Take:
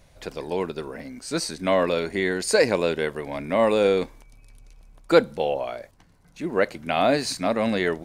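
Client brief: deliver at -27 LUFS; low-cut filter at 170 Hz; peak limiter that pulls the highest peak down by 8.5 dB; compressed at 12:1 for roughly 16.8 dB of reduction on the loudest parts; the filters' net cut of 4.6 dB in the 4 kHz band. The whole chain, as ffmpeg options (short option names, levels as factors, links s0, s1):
-af "highpass=170,equalizer=f=4000:t=o:g=-5.5,acompressor=threshold=0.0398:ratio=12,volume=2.51,alimiter=limit=0.168:level=0:latency=1"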